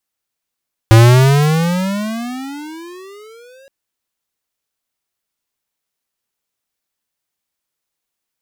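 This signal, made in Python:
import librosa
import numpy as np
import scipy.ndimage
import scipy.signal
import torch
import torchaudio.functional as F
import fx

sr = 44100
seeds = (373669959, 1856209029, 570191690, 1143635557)

y = fx.riser_tone(sr, length_s=2.77, level_db=-4.5, wave='square', hz=110.0, rise_st=28.0, swell_db=-39.0)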